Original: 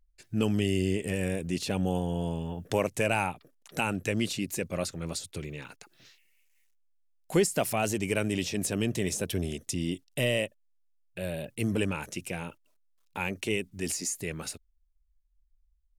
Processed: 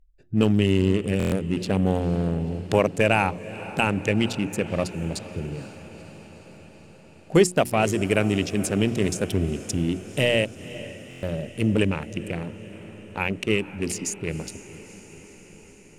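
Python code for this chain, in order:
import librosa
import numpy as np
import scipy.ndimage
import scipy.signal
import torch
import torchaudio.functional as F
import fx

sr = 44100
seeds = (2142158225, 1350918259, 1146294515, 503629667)

y = fx.wiener(x, sr, points=41)
y = fx.high_shelf(y, sr, hz=10000.0, db=-9.0)
y = fx.hum_notches(y, sr, base_hz=60, count=6)
y = fx.echo_diffused(y, sr, ms=483, feedback_pct=68, wet_db=-16.0)
y = fx.buffer_glitch(y, sr, at_s=(1.18, 11.09), block=1024, repeats=5)
y = F.gain(torch.from_numpy(y), 8.0).numpy()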